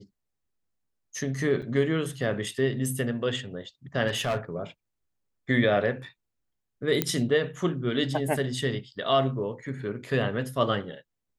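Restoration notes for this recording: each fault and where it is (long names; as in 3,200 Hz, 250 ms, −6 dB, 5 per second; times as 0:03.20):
0:01.62–0:01.63: drop-out 6.1 ms
0:04.07–0:04.38: clipping −23 dBFS
0:07.02: click −7 dBFS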